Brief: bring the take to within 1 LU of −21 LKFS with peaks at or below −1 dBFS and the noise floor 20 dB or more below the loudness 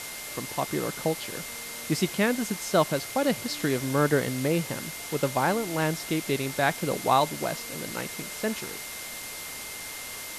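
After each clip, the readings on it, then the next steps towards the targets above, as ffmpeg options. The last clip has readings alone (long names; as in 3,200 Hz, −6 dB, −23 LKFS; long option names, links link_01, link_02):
interfering tone 2,100 Hz; level of the tone −43 dBFS; background noise floor −38 dBFS; target noise floor −49 dBFS; integrated loudness −28.5 LKFS; sample peak −9.0 dBFS; target loudness −21.0 LKFS
→ -af "bandreject=frequency=2100:width=30"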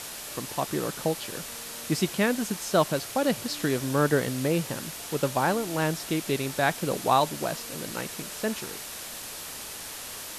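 interfering tone none found; background noise floor −39 dBFS; target noise floor −49 dBFS
→ -af "afftdn=noise_reduction=10:noise_floor=-39"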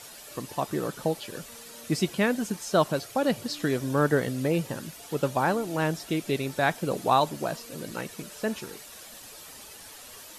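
background noise floor −46 dBFS; target noise floor −48 dBFS
→ -af "afftdn=noise_reduction=6:noise_floor=-46"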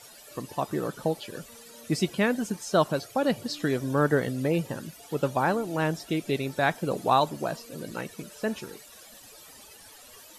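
background noise floor −50 dBFS; integrated loudness −28.0 LKFS; sample peak −9.5 dBFS; target loudness −21.0 LKFS
→ -af "volume=7dB"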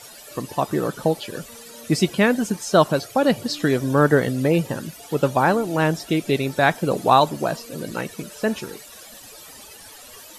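integrated loudness −21.0 LKFS; sample peak −2.5 dBFS; background noise floor −43 dBFS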